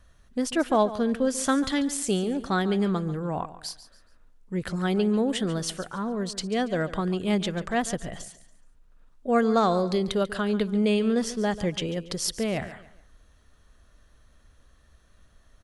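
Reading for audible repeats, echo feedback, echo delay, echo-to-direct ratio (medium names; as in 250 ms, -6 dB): 3, 32%, 141 ms, -14.5 dB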